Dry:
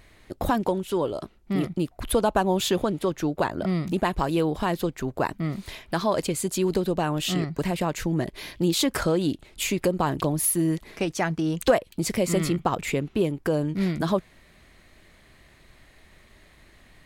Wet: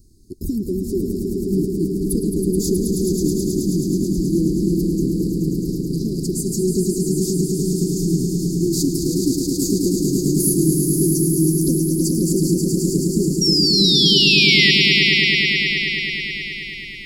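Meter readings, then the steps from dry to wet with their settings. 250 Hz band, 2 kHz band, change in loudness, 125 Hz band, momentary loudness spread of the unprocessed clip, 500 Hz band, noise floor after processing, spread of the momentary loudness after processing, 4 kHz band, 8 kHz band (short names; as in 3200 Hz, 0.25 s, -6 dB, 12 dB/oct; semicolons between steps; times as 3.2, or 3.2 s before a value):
+8.5 dB, +13.5 dB, +8.5 dB, +8.5 dB, 6 LU, +3.0 dB, -30 dBFS, 12 LU, +17.0 dB, +9.0 dB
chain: Chebyshev band-stop 390–4700 Hz, order 5; painted sound fall, 13.41–14.71, 1900–5700 Hz -22 dBFS; swelling echo 0.107 s, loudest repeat 5, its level -6 dB; gain +4 dB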